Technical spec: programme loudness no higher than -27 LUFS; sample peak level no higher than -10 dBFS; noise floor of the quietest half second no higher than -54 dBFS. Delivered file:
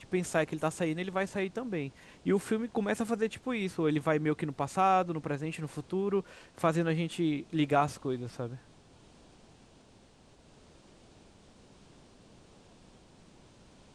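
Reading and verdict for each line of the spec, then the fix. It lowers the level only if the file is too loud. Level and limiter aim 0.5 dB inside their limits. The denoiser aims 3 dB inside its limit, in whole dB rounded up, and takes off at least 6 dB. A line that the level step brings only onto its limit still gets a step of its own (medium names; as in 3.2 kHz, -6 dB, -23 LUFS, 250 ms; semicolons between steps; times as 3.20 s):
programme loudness -32.0 LUFS: pass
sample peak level -13.5 dBFS: pass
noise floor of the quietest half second -59 dBFS: pass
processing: none needed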